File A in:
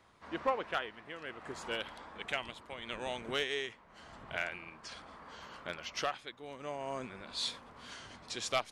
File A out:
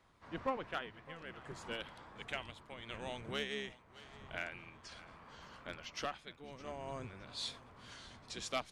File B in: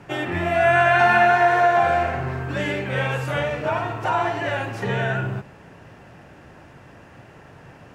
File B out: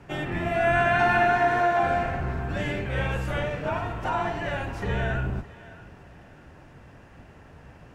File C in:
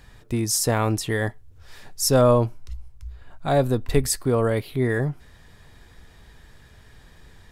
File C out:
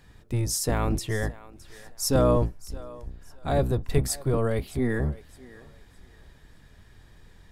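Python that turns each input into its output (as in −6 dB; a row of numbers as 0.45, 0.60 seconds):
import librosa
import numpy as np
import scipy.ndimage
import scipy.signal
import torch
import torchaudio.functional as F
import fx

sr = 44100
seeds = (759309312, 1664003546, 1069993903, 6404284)

p1 = fx.octave_divider(x, sr, octaves=1, level_db=2.0)
p2 = p1 + fx.echo_thinned(p1, sr, ms=614, feedback_pct=30, hz=390.0, wet_db=-18, dry=0)
y = F.gain(torch.from_numpy(p2), -5.5).numpy()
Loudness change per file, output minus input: −5.0, −5.0, −4.0 LU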